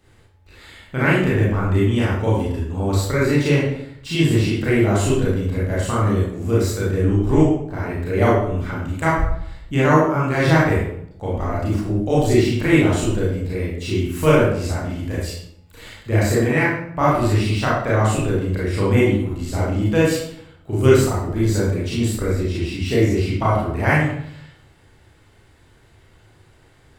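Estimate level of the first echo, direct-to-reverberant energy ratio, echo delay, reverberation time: no echo, -7.5 dB, no echo, 0.70 s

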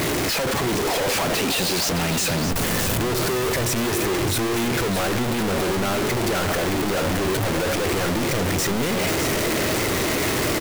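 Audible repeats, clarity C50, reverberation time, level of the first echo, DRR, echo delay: 1, no reverb, no reverb, -8.0 dB, no reverb, 614 ms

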